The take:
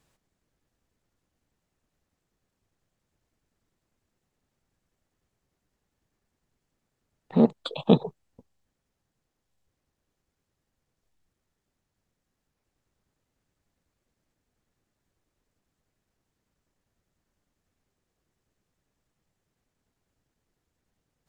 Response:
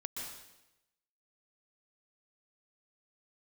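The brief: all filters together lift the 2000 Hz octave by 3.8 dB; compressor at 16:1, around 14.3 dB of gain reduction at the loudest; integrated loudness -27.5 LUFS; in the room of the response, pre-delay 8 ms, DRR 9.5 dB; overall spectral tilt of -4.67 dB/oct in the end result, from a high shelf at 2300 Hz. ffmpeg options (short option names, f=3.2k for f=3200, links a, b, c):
-filter_complex "[0:a]equalizer=f=2k:t=o:g=3,highshelf=f=2.3k:g=3.5,acompressor=threshold=-26dB:ratio=16,asplit=2[a][b];[1:a]atrim=start_sample=2205,adelay=8[c];[b][c]afir=irnorm=-1:irlink=0,volume=-9.5dB[d];[a][d]amix=inputs=2:normalize=0,volume=7.5dB"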